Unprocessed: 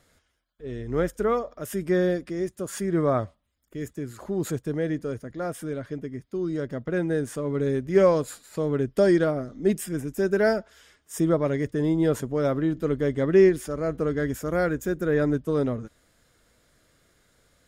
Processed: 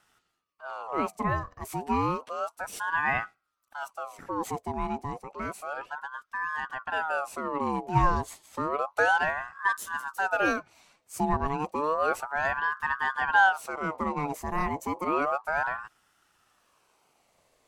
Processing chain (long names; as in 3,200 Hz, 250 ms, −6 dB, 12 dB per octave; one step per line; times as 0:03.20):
tape wow and flutter 26 cents
ring modulator whose carrier an LFO sweeps 950 Hz, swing 45%, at 0.31 Hz
level −1.5 dB